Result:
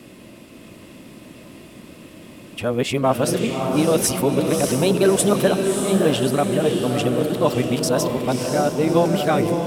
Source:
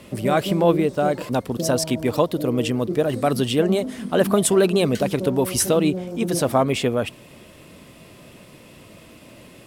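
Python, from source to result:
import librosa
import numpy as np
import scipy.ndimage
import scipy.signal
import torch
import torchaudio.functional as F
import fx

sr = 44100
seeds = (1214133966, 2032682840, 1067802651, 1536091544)

y = x[::-1].copy()
y = fx.dmg_noise_band(y, sr, seeds[0], low_hz=170.0, high_hz=360.0, level_db=-47.0)
y = fx.echo_diffused(y, sr, ms=608, feedback_pct=49, wet_db=-4.5)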